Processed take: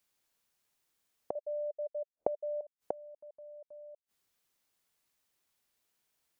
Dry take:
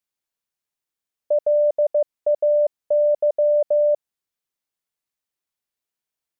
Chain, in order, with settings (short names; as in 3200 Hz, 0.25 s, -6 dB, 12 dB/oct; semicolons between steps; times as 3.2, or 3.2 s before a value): 1.35–2.61 synth low-pass 590 Hz, resonance Q 4.9; flipped gate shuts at -27 dBFS, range -40 dB; gain +7.5 dB